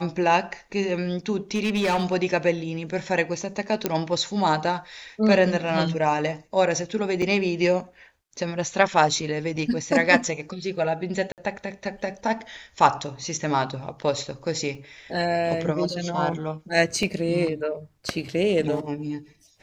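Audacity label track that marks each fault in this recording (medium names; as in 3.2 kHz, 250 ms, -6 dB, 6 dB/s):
1.550000	2.140000	clipped -19 dBFS
3.860000	3.860000	pop -7 dBFS
7.220000	7.220000	dropout 3.6 ms
11.320000	11.380000	dropout 58 ms
14.750000	14.750000	dropout 3 ms
17.030000	17.030000	dropout 2.3 ms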